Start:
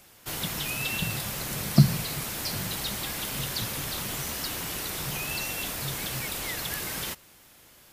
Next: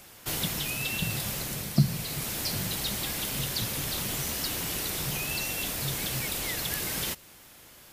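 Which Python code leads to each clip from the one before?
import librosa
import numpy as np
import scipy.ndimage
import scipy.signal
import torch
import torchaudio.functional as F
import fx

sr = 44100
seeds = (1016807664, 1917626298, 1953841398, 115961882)

y = fx.dynamic_eq(x, sr, hz=1200.0, q=0.88, threshold_db=-48.0, ratio=4.0, max_db=-4)
y = fx.rider(y, sr, range_db=5, speed_s=0.5)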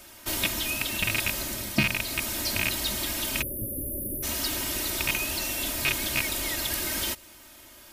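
y = fx.rattle_buzz(x, sr, strikes_db=-31.0, level_db=-13.0)
y = y + 0.82 * np.pad(y, (int(3.2 * sr / 1000.0), 0))[:len(y)]
y = fx.spec_erase(y, sr, start_s=3.42, length_s=0.81, low_hz=620.0, high_hz=10000.0)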